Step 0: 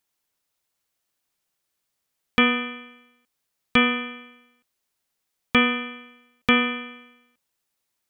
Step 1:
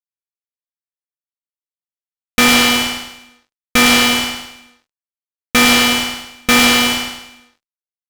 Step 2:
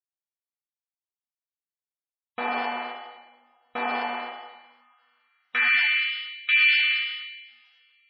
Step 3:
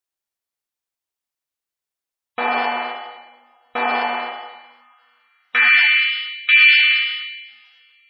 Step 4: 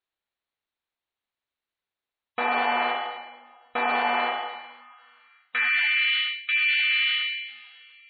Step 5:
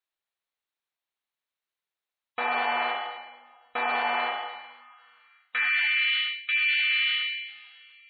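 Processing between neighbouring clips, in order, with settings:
fuzz box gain 41 dB, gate -44 dBFS; on a send: feedback delay 106 ms, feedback 44%, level -5 dB; on the sum: trim +4 dB
two-slope reverb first 0.91 s, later 3.2 s, from -24 dB, DRR 1 dB; band-pass sweep 800 Hz -> 2.5 kHz, 4.44–6.11 s; spectral gate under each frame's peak -25 dB strong; trim -6.5 dB
peaking EQ 170 Hz -6 dB 1.2 oct; trim +8 dB
reverse; compression 10:1, threshold -23 dBFS, peak gain reduction 15 dB; reverse; elliptic low-pass 4.1 kHz, stop band 40 dB; trim +3 dB
bass shelf 350 Hz -9 dB; trim -1.5 dB

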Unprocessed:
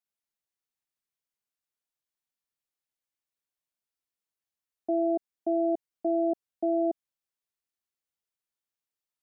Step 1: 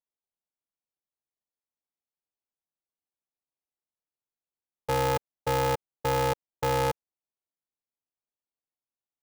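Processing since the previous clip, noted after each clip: local Wiener filter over 25 samples; peaking EQ 600 Hz +8 dB 1.5 oct; polarity switched at an audio rate 200 Hz; trim -5 dB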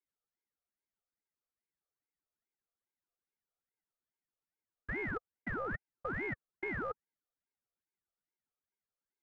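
compressor with a negative ratio -33 dBFS, ratio -1; two resonant band-passes 550 Hz, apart 1.3 oct; ring modulator with a swept carrier 810 Hz, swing 60%, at 2.4 Hz; trim +4 dB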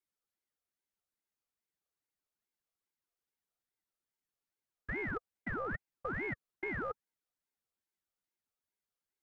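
vibrato 2.1 Hz 23 cents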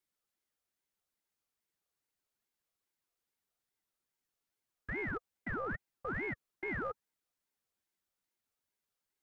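peak limiter -32.5 dBFS, peak gain reduction 6.5 dB; trim +3 dB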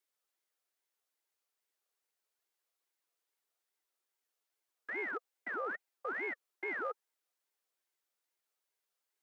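high-pass 360 Hz 24 dB/octave; trim +1 dB

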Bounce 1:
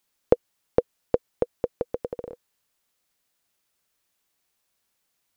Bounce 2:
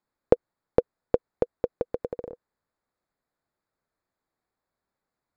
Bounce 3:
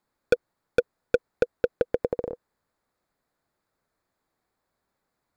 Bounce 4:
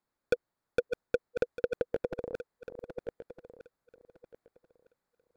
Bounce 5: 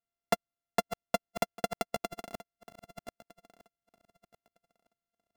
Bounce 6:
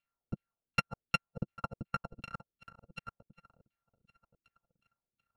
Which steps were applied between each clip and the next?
local Wiener filter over 15 samples
hard clipper -18 dBFS, distortion -4 dB; trim +6 dB
backward echo that repeats 629 ms, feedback 42%, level -7 dB; trim -7 dB
sorted samples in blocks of 64 samples; upward expansion 1.5:1, over -42 dBFS
bit-reversed sample order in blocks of 128 samples; LFO low-pass saw down 2.7 Hz 250–3100 Hz; trim +4.5 dB

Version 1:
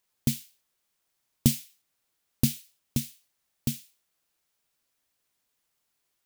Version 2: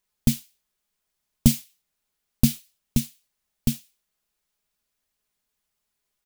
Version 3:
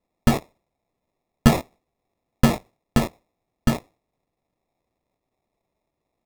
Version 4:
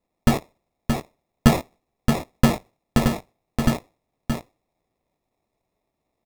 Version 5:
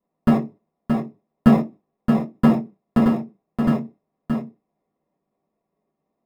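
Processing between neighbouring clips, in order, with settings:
waveshaping leveller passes 1; bass shelf 94 Hz +11 dB; comb 4.8 ms, depth 43%; trim -1 dB
in parallel at -10 dB: fuzz box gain 39 dB, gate -44 dBFS; on the sum: sample-and-hold 29×; peaking EQ 690 Hz +4.5 dB 0.25 oct
delay 624 ms -5 dB
reverberation RT60 0.20 s, pre-delay 3 ms, DRR -5.5 dB; trim -17 dB

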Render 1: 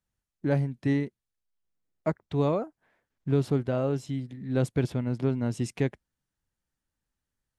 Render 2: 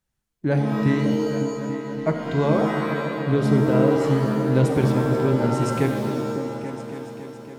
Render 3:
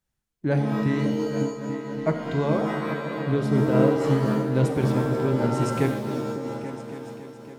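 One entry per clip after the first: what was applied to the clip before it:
delay with an opening low-pass 279 ms, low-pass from 200 Hz, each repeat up 2 oct, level -6 dB; pitch-shifted reverb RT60 1.3 s, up +7 st, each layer -2 dB, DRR 5.5 dB; trim +4.5 dB
random flutter of the level, depth 50%

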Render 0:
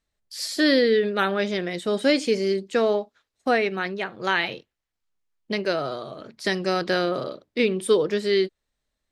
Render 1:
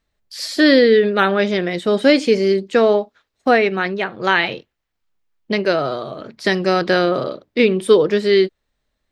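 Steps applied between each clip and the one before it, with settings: peaking EQ 9.7 kHz -8 dB 1.6 oct; trim +7.5 dB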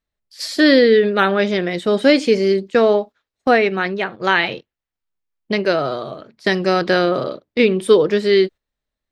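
gate -30 dBFS, range -10 dB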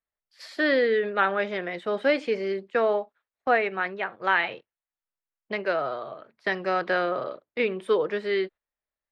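three-band isolator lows -12 dB, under 520 Hz, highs -17 dB, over 2.7 kHz; trim -5 dB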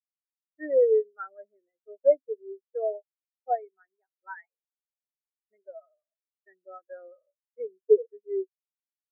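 spectral contrast expander 4:1

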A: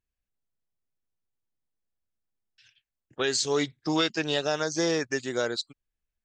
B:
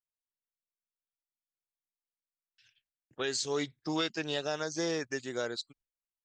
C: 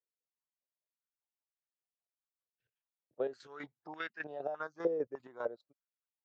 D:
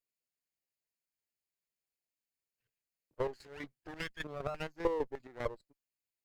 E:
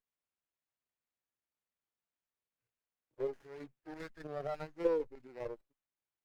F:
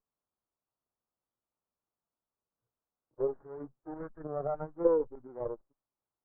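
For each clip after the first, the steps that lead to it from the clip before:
gate with hold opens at -60 dBFS; trim -6.5 dB
tilt EQ -3.5 dB/octave; square tremolo 5 Hz, depth 65%, duty 35%; step-sequenced band-pass 3.3 Hz 490–1700 Hz; trim +6 dB
comb filter that takes the minimum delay 0.42 ms; trim +1.5 dB
wow and flutter 23 cents; harmonic-percussive split percussive -17 dB; sliding maximum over 9 samples; trim +3 dB
steep low-pass 1.3 kHz 36 dB/octave; trim +5.5 dB

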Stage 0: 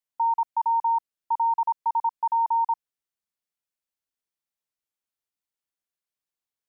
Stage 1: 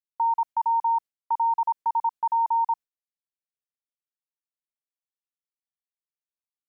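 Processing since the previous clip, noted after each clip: gate with hold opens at -30 dBFS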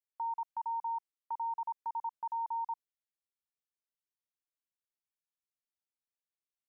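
peak limiter -24.5 dBFS, peak gain reduction 6 dB; trim -7 dB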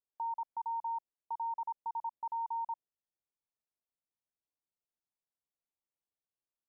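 low-pass 1 kHz 24 dB/octave; trim +1 dB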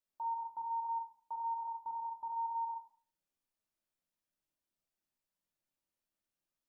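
peak limiter -38.5 dBFS, peak gain reduction 6 dB; simulated room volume 360 m³, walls furnished, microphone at 2.6 m; trim -1 dB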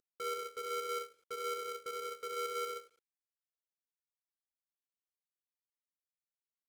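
CVSD coder 64 kbps; polarity switched at an audio rate 440 Hz; trim -1 dB

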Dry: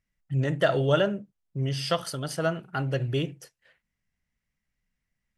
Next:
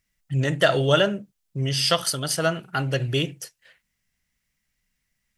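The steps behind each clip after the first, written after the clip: treble shelf 2.2 kHz +10.5 dB; trim +2.5 dB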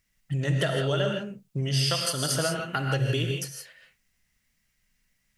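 compression 12:1, threshold -26 dBFS, peak gain reduction 14 dB; gated-style reverb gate 190 ms rising, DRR 2.5 dB; trim +1.5 dB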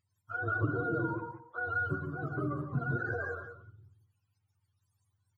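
spectrum inverted on a logarithmic axis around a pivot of 440 Hz; echo from a far wall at 31 m, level -11 dB; trim -5 dB

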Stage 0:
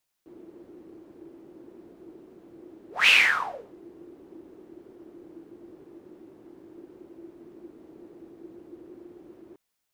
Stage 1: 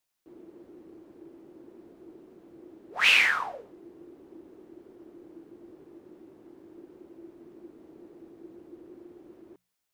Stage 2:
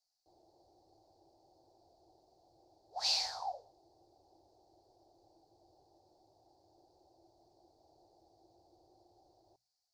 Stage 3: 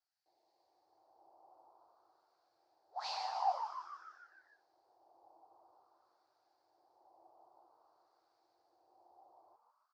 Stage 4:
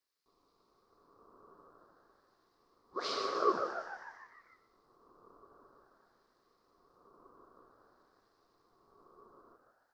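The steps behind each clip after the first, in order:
hum notches 60/120/180 Hz; trim -2 dB
FFT filter 110 Hz 0 dB, 220 Hz -23 dB, 450 Hz -11 dB, 770 Hz +10 dB, 1.2 kHz -18 dB, 2.1 kHz -24 dB, 3 kHz -17 dB, 4.5 kHz +15 dB, 9.2 kHz -5 dB, 15 kHz -10 dB; trim -7.5 dB
LFO band-pass sine 0.51 Hz 820–2100 Hz; frequency-shifting echo 149 ms, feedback 57%, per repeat +130 Hz, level -8 dB; trim +7 dB
ring modulator 360 Hz; reverberation RT60 0.80 s, pre-delay 84 ms, DRR 12.5 dB; trim +7 dB

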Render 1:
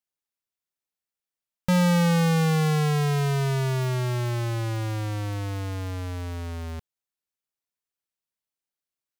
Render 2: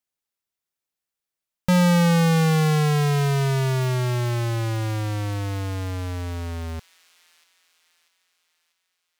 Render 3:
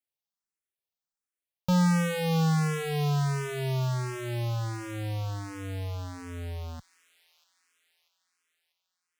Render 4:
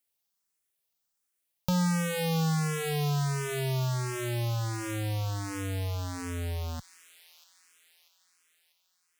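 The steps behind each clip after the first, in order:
feedback echo behind a high-pass 642 ms, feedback 49%, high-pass 2.5 kHz, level -12.5 dB; trim +3 dB
barber-pole phaser +1.4 Hz; trim -4.5 dB
treble shelf 5.2 kHz +8 dB; compression 2:1, threshold -38 dBFS, peak gain reduction 9.5 dB; trim +5.5 dB

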